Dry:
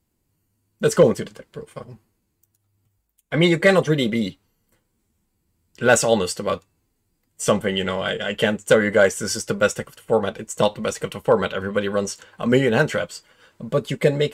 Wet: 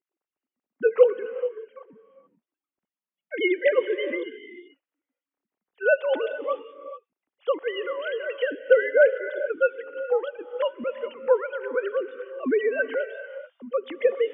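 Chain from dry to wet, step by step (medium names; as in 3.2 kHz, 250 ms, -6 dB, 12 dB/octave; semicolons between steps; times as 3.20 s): formants replaced by sine waves; gated-style reverb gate 460 ms rising, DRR 11.5 dB; trim -4.5 dB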